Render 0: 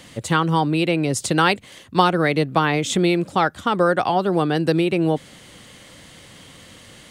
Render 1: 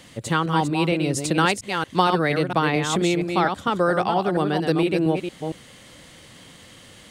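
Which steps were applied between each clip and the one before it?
delay that plays each chunk backwards 230 ms, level −5.5 dB
level −3 dB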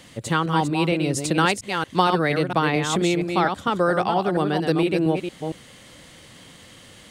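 no processing that can be heard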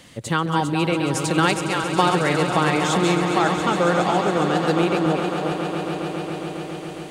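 echo that builds up and dies away 137 ms, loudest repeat 5, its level −12 dB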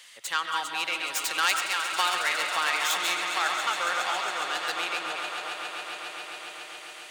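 stylus tracing distortion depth 0.068 ms
high-pass filter 1,500 Hz 12 dB per octave
convolution reverb RT60 0.45 s, pre-delay 85 ms, DRR 7 dB

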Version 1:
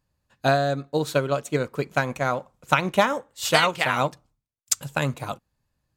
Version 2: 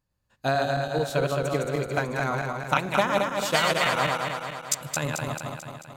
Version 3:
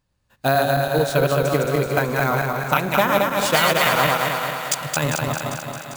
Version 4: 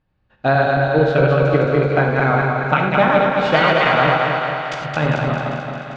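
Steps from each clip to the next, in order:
feedback delay that plays each chunk backwards 110 ms, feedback 75%, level −2.5 dB; level −5 dB
in parallel at +1.5 dB: brickwall limiter −14.5 dBFS, peak gain reduction 8.5 dB; on the sum: sample-rate reduction 15,000 Hz, jitter 0%; feedback echo with a high-pass in the loop 398 ms, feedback 57%, high-pass 420 Hz, level −11 dB
Bessel low-pass filter 2,400 Hz, order 4; notch filter 1,000 Hz, Q 13; reverb whose tail is shaped and stops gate 130 ms flat, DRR 3.5 dB; level +3 dB

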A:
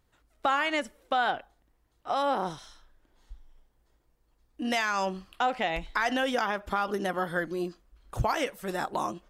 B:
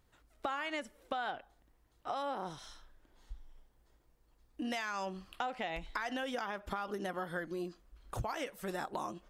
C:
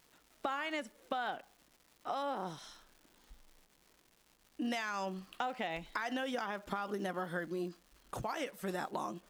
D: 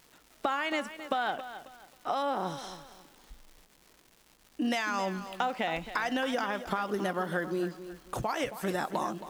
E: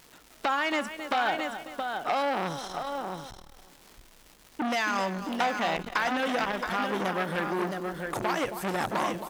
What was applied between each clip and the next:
downward compressor 3 to 1, threshold −38 dBFS, peak gain reduction 12 dB
surface crackle 380 per second −52 dBFS; low shelf with overshoot 120 Hz −10 dB, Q 1.5
feedback echo at a low word length 271 ms, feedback 35%, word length 10 bits, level −12 dB; level +6.5 dB
single-tap delay 672 ms −7 dB; saturating transformer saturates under 2,200 Hz; level +5.5 dB

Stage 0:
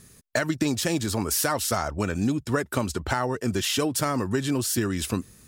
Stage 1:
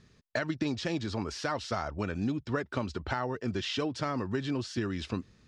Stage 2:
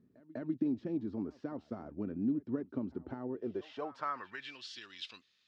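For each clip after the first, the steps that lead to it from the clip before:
low-pass filter 5,000 Hz 24 dB per octave; level −6.5 dB
band-pass filter sweep 270 Hz → 3,400 Hz, 0:03.26–0:04.65; echo ahead of the sound 198 ms −20.5 dB; level +1 dB

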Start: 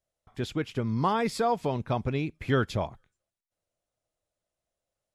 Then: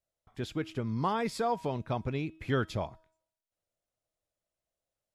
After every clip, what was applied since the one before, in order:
tuned comb filter 320 Hz, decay 0.64 s, mix 40%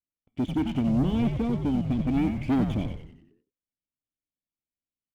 formant resonators in series i
leveller curve on the samples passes 3
on a send: echo with shifted repeats 92 ms, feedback 47%, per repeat −87 Hz, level −6 dB
on the sum: level +7.5 dB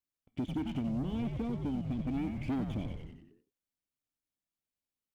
downward compressor 3 to 1, threshold −35 dBFS, peak gain reduction 11.5 dB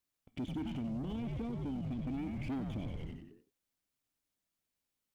brickwall limiter −38 dBFS, peak gain reduction 11.5 dB
level +5 dB

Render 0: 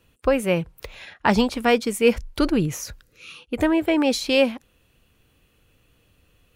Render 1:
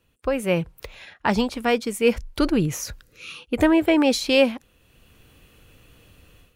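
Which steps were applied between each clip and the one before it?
automatic gain control gain up to 14 dB
level −5.5 dB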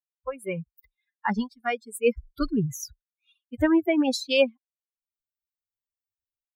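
spectral dynamics exaggerated over time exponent 3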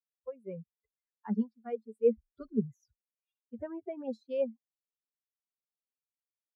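pair of resonant band-passes 310 Hz, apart 1 octave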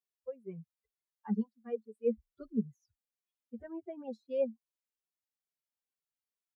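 barber-pole flanger 2.2 ms −2.2 Hz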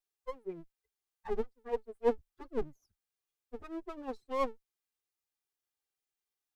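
lower of the sound and its delayed copy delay 2.5 ms
level +3 dB

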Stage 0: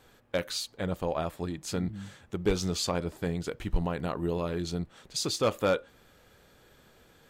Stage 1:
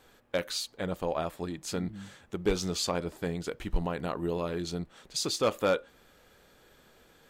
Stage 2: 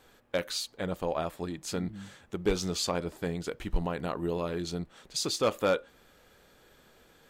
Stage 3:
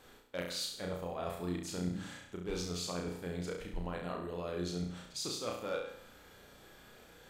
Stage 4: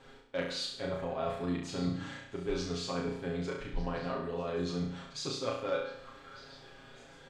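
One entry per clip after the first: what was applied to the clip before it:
parametric band 100 Hz −6 dB 1.4 octaves
no processing that can be heard
reversed playback; downward compressor 6 to 1, threshold −38 dBFS, peak gain reduction 15.5 dB; reversed playback; flutter between parallel walls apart 5.8 metres, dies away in 0.63 s
high-frequency loss of the air 100 metres; comb filter 7.4 ms, depth 86%; echo through a band-pass that steps 600 ms, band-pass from 1,400 Hz, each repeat 1.4 octaves, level −11.5 dB; level +2 dB

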